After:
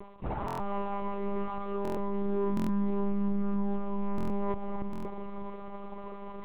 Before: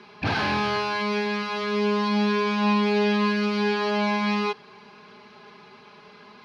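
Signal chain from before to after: dynamic EQ 200 Hz, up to +4 dB, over -34 dBFS; reverse; compressor 10:1, threshold -36 dBFS, peak gain reduction 20 dB; reverse; polynomial smoothing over 65 samples; crackle 160/s -52 dBFS; on a send: split-band echo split 510 Hz, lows 0.535 s, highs 0.287 s, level -4 dB; on the sum: soft clip -30.5 dBFS, distortion -19 dB; monotone LPC vocoder at 8 kHz 200 Hz; stuck buffer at 0.46/1.83/2.55/4.16/4.91, samples 1024, times 5; gain +8 dB

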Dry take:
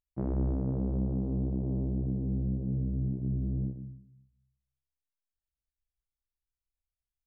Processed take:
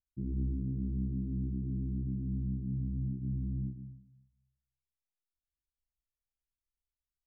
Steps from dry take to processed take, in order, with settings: inverse Chebyshev low-pass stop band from 610 Hz, stop band 40 dB; gain -3.5 dB

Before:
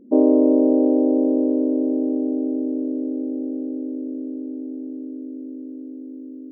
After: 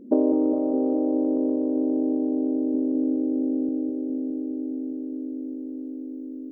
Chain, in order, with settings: 2.74–3.69 low shelf 300 Hz +5.5 dB; compressor 6:1, threshold -21 dBFS, peak gain reduction 10 dB; darkening echo 0.205 s, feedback 82%, low-pass 830 Hz, level -4.5 dB; gain +3.5 dB

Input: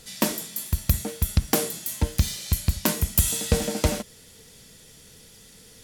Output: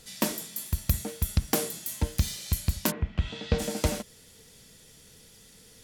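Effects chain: 2.9–3.58 LPF 2100 Hz -> 4700 Hz 24 dB/oct; gain -4 dB

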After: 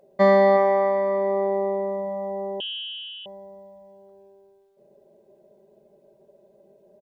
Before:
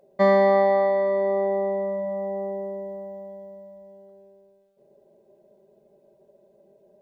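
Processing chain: echo 0.369 s -12.5 dB; 2.6–3.26 inverted band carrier 3600 Hz; gain +1.5 dB

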